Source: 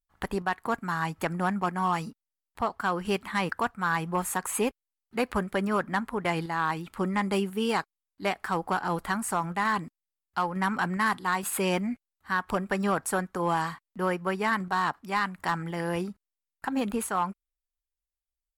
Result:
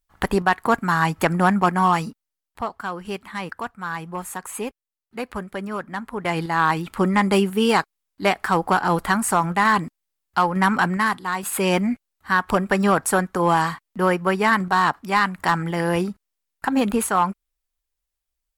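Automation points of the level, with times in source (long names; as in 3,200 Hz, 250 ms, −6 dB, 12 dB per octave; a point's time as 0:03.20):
0:01.77 +10 dB
0:02.96 −2 dB
0:05.94 −2 dB
0:06.59 +9 dB
0:10.79 +9 dB
0:11.28 +1.5 dB
0:11.83 +8.5 dB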